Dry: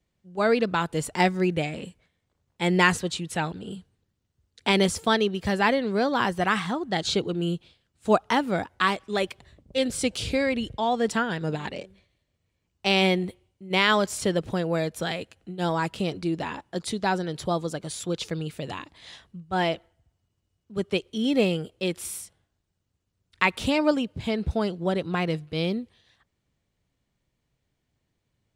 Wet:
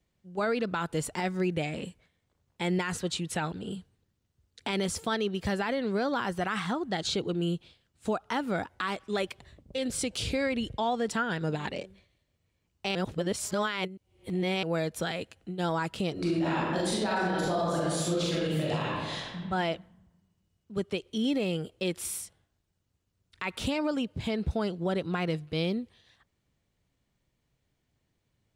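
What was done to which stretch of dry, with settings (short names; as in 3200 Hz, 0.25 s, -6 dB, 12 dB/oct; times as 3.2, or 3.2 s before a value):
12.95–14.63 reverse
16.13–19.37 reverb throw, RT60 1.4 s, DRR -8 dB
whole clip: dynamic EQ 1400 Hz, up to +5 dB, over -43 dBFS, Q 6.6; compressor 1.5:1, threshold -30 dBFS; limiter -20.5 dBFS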